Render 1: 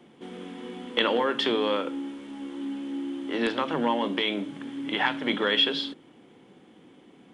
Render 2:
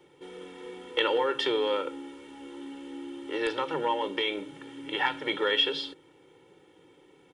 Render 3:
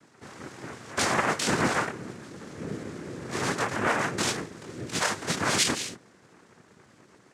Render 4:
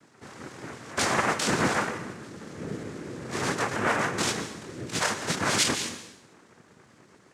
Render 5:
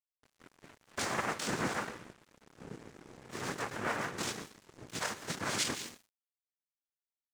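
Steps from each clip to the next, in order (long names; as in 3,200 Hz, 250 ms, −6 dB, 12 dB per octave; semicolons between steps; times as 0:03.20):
high-shelf EQ 7,100 Hz +4.5 dB; comb filter 2.2 ms, depth 92%; level −5.5 dB
gain into a clipping stage and back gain 21 dB; multi-voice chorus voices 2, 0.91 Hz, delay 23 ms, depth 2.7 ms; cochlear-implant simulation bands 3; level +5 dB
dense smooth reverb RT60 0.83 s, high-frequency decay 0.95×, pre-delay 110 ms, DRR 10.5 dB
dead-zone distortion −38.5 dBFS; level −8 dB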